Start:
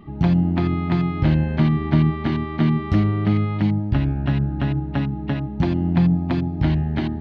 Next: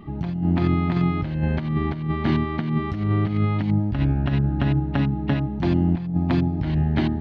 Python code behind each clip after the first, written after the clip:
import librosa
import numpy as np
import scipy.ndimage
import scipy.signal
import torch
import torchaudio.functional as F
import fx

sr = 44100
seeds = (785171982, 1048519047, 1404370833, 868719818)

y = fx.over_compress(x, sr, threshold_db=-20.0, ratio=-0.5)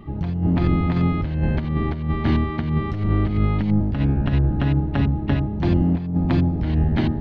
y = fx.octave_divider(x, sr, octaves=1, level_db=-2.0)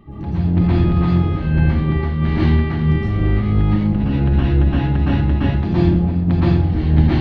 y = fx.rev_plate(x, sr, seeds[0], rt60_s=0.59, hf_ratio=0.95, predelay_ms=105, drr_db=-9.0)
y = y * 10.0 ** (-5.5 / 20.0)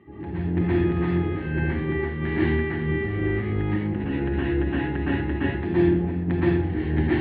y = fx.cabinet(x, sr, low_hz=110.0, low_slope=12, high_hz=3100.0, hz=(140.0, 210.0, 370.0, 620.0, 1200.0, 1800.0), db=(-9, -6, 7, -6, -6, 9))
y = y * 10.0 ** (-4.0 / 20.0)